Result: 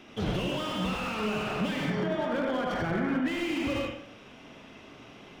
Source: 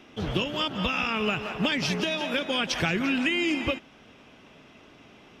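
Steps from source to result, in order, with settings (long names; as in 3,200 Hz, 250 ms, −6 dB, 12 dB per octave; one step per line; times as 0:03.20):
0:01.79–0:03.28: Savitzky-Golay smoothing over 41 samples
on a send at −1.5 dB: convolution reverb RT60 0.55 s, pre-delay 67 ms
on the sum: brickwall limiter −21 dBFS, peak gain reduction 8 dB
flutter between parallel walls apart 7.3 metres, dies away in 0.27 s
slew-rate limiting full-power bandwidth 43 Hz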